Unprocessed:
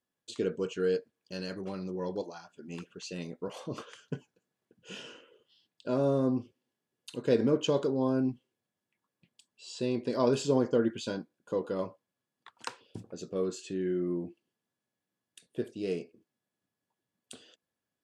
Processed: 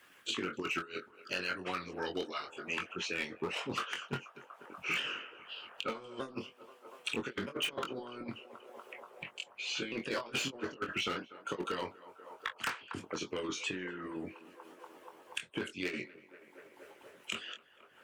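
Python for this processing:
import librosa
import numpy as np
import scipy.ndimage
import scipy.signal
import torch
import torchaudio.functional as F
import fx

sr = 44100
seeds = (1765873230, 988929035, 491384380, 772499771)

p1 = fx.pitch_ramps(x, sr, semitones=-2.5, every_ms=1240)
p2 = fx.over_compress(p1, sr, threshold_db=-33.0, ratio=-0.5)
p3 = fx.band_shelf(p2, sr, hz=1900.0, db=11.5, octaves=1.7)
p4 = p3 + fx.echo_banded(p3, sr, ms=241, feedback_pct=84, hz=770.0, wet_db=-19.0, dry=0)
p5 = fx.hpss(p4, sr, part='harmonic', gain_db=-17)
p6 = np.clip(p5, -10.0 ** (-29.5 / 20.0), 10.0 ** (-29.5 / 20.0))
p7 = fx.low_shelf(p6, sr, hz=210.0, db=-7.0)
p8 = fx.doubler(p7, sr, ms=22.0, db=-6.0)
p9 = fx.band_squash(p8, sr, depth_pct=70)
y = p9 * librosa.db_to_amplitude(2.5)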